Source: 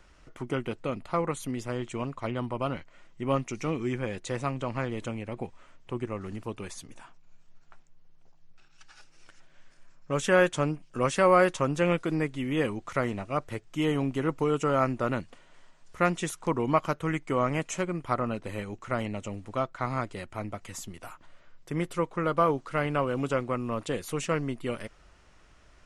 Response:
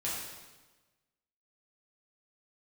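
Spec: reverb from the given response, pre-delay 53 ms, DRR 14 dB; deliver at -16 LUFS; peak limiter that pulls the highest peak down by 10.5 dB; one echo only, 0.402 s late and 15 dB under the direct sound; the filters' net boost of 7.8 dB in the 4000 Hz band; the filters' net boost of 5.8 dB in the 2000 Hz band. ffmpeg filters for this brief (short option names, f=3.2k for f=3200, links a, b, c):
-filter_complex "[0:a]equalizer=f=2k:t=o:g=5.5,equalizer=f=4k:t=o:g=8.5,alimiter=limit=-17dB:level=0:latency=1,aecho=1:1:402:0.178,asplit=2[a][b];[1:a]atrim=start_sample=2205,adelay=53[c];[b][c]afir=irnorm=-1:irlink=0,volume=-18.5dB[d];[a][d]amix=inputs=2:normalize=0,volume=14.5dB"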